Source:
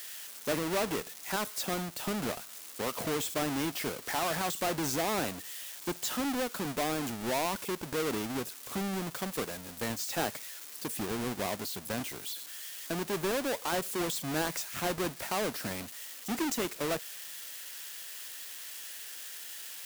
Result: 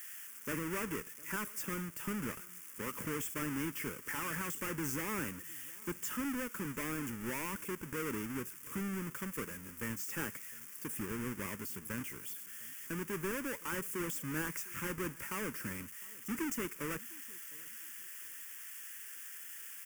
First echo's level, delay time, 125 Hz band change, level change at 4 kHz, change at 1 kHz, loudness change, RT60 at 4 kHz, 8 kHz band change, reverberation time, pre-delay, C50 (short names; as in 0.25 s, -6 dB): -23.0 dB, 0.706 s, -3.0 dB, -13.0 dB, -9.0 dB, -5.5 dB, none, -5.5 dB, none, none, none